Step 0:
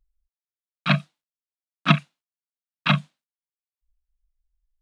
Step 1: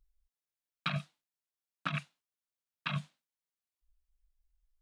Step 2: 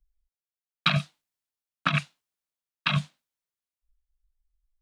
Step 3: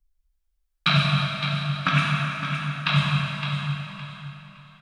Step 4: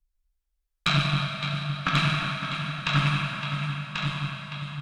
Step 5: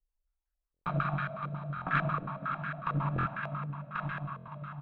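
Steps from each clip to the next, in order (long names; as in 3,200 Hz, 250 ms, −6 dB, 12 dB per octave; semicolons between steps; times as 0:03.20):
dynamic equaliser 270 Hz, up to −7 dB, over −33 dBFS, Q 0.72; compressor whose output falls as the input rises −27 dBFS, ratio −1; level −7 dB
dynamic equaliser 4,800 Hz, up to +4 dB, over −51 dBFS, Q 0.75; multiband upward and downward expander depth 40%; level +8 dB
on a send: repeating echo 563 ms, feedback 25%, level −8.5 dB; on the sum: dense smooth reverb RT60 3.3 s, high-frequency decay 0.8×, DRR −4.5 dB
tube saturation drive 9 dB, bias 0.65; single-tap delay 1,089 ms −4 dB
buffer that repeats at 0:00.72/0:01.75/0:03.14/0:04.36, samples 1,024, times 4; low-pass on a step sequencer 11 Hz 480–1,600 Hz; level −8.5 dB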